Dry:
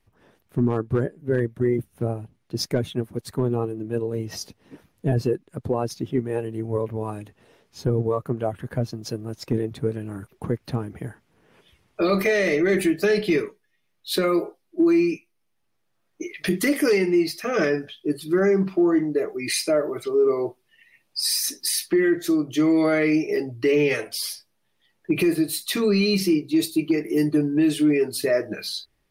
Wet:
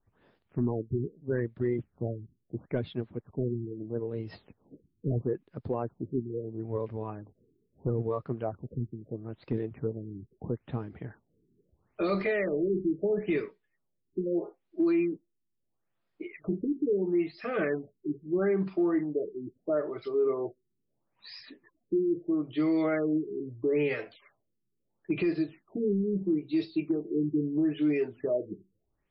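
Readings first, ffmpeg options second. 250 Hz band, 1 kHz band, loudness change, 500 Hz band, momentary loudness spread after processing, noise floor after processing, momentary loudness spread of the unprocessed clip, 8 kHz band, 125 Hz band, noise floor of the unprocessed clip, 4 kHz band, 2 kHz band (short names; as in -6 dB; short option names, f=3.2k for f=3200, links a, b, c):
-7.5 dB, -9.0 dB, -8.0 dB, -7.5 dB, 13 LU, -79 dBFS, 12 LU, under -40 dB, -7.5 dB, -71 dBFS, -21.5 dB, -12.0 dB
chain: -filter_complex "[0:a]acrossover=split=2700[a][b];[b]acompressor=threshold=-38dB:ratio=4:attack=1:release=60[c];[a][c]amix=inputs=2:normalize=0,afftfilt=real='re*lt(b*sr/1024,410*pow(5500/410,0.5+0.5*sin(2*PI*0.76*pts/sr)))':imag='im*lt(b*sr/1024,410*pow(5500/410,0.5+0.5*sin(2*PI*0.76*pts/sr)))':win_size=1024:overlap=0.75,volume=-7.5dB"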